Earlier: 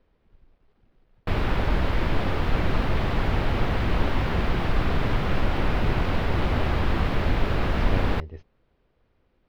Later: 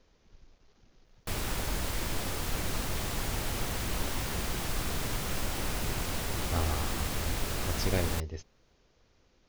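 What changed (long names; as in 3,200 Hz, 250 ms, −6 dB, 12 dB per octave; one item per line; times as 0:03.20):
background −11.0 dB
master: remove high-frequency loss of the air 380 metres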